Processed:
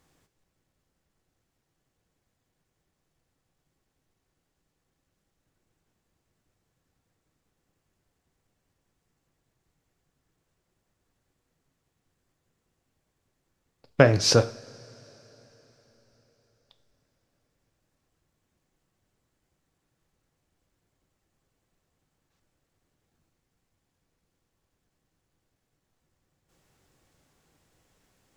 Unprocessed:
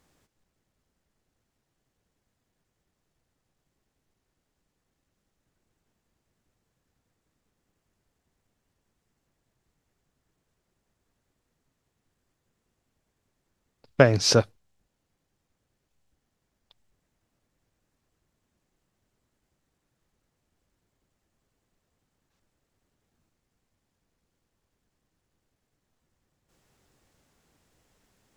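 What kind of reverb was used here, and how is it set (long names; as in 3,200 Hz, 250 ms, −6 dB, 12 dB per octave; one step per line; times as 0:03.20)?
coupled-rooms reverb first 0.43 s, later 4.5 s, from −22 dB, DRR 10 dB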